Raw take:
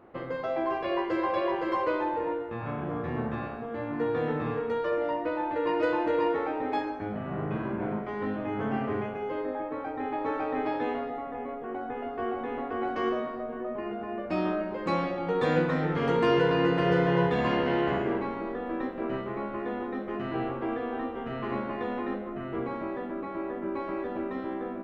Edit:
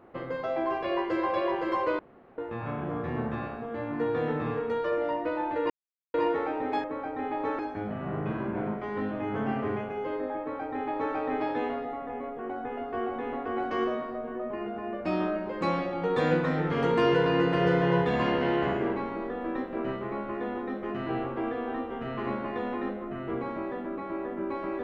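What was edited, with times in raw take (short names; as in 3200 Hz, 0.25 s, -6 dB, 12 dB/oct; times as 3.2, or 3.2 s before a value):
1.99–2.38 room tone
5.7–6.14 mute
9.65–10.4 copy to 6.84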